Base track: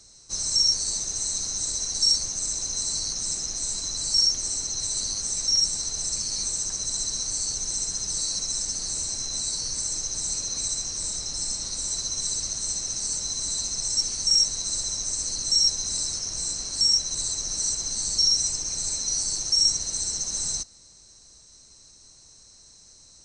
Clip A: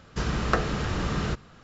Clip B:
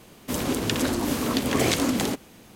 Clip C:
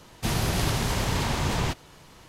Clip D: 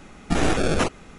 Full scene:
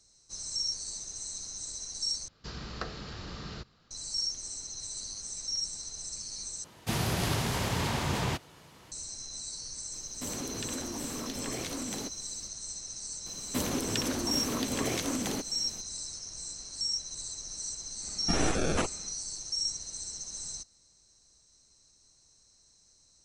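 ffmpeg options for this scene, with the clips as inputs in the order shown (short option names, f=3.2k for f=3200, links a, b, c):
-filter_complex "[2:a]asplit=2[a][b];[0:a]volume=-11.5dB[c];[1:a]equalizer=f=4.5k:t=o:w=0.7:g=12.5[d];[3:a]highpass=72[e];[a]acompressor=threshold=-33dB:ratio=3:attack=85:release=42:knee=1:detection=rms[f];[b]acompressor=threshold=-30dB:ratio=5:attack=70:release=650:knee=1:detection=peak[g];[c]asplit=3[h][i][j];[h]atrim=end=2.284[k];[d]atrim=end=1.63,asetpts=PTS-STARTPTS,volume=-14.5dB[l];[i]atrim=start=3.906:end=6.644[m];[e]atrim=end=2.28,asetpts=PTS-STARTPTS,volume=-3.5dB[n];[j]atrim=start=8.916[o];[f]atrim=end=2.55,asetpts=PTS-STARTPTS,volume=-9dB,afade=t=in:d=0.004:c=hsin,afade=t=out:st=2.546:d=0.004:c=hsin,adelay=9930[p];[g]atrim=end=2.55,asetpts=PTS-STARTPTS,volume=-1.5dB,afade=t=in:d=0.004:c=hsin,afade=t=out:st=2.546:d=0.004:c=hsin,adelay=13260[q];[4:a]atrim=end=1.18,asetpts=PTS-STARTPTS,volume=-7.5dB,afade=t=in:d=0.1,afade=t=out:st=1.08:d=0.1,adelay=17980[r];[k][l]acrossfade=d=0.004:c1=hsin:c2=hsin[s];[s][m]acrossfade=d=0.004:c1=hsin:c2=hsin[t];[t][n]acrossfade=d=0.004:c1=hsin:c2=hsin[u];[u][o]acrossfade=d=0.004:c1=hsin:c2=hsin[v];[v][p][q][r]amix=inputs=4:normalize=0"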